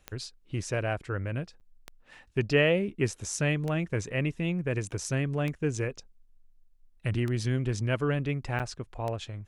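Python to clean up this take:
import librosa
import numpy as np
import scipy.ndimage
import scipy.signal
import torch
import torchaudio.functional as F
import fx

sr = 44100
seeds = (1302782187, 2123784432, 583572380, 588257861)

y = fx.fix_declick_ar(x, sr, threshold=10.0)
y = fx.fix_interpolate(y, sr, at_s=(1.6, 4.91, 8.59), length_ms=8.1)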